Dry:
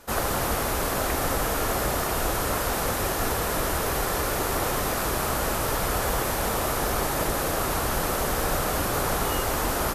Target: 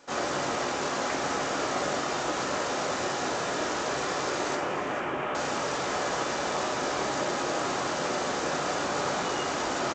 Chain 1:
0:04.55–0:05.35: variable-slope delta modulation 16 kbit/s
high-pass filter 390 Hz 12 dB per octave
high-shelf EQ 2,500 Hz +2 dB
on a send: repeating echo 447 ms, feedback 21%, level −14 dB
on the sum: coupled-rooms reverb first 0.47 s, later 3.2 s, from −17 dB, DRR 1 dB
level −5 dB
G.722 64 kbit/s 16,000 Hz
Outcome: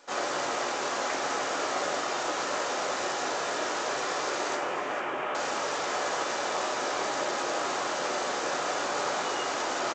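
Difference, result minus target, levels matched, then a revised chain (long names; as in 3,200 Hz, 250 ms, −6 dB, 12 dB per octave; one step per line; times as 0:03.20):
250 Hz band −4.5 dB
0:04.55–0:05.35: variable-slope delta modulation 16 kbit/s
high-pass filter 190 Hz 12 dB per octave
high-shelf EQ 2,500 Hz +2 dB
on a send: repeating echo 447 ms, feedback 21%, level −14 dB
on the sum: coupled-rooms reverb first 0.47 s, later 3.2 s, from −17 dB, DRR 1 dB
level −5 dB
G.722 64 kbit/s 16,000 Hz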